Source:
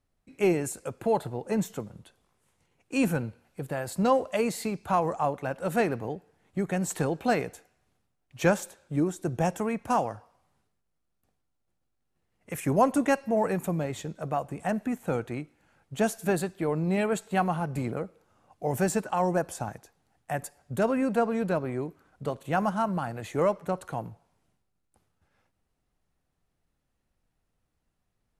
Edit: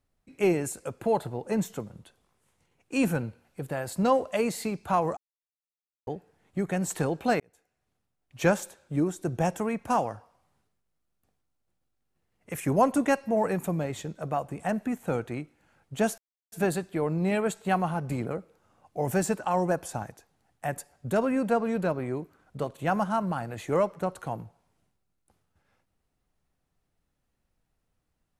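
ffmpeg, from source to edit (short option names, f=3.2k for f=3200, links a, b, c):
-filter_complex "[0:a]asplit=5[a][b][c][d][e];[a]atrim=end=5.17,asetpts=PTS-STARTPTS,afade=t=out:st=5.166:d=0.004:c=hsin[f];[b]atrim=start=5.17:end=6.07,asetpts=PTS-STARTPTS,volume=0[g];[c]atrim=start=6.07:end=7.4,asetpts=PTS-STARTPTS,afade=t=in:d=0.004:c=hsin,afade=t=out:st=1.326:d=0.004:c=hsin[h];[d]atrim=start=7.4:end=16.18,asetpts=PTS-STARTPTS,afade=t=in:d=1.04,afade=t=out:st=8.776:d=0.004:c=hsin,apad=pad_dur=0.34[i];[e]atrim=start=16.18,asetpts=PTS-STARTPTS,afade=t=in:d=0.004:c=hsin[j];[f][g][h][i][j]concat=n=5:v=0:a=1"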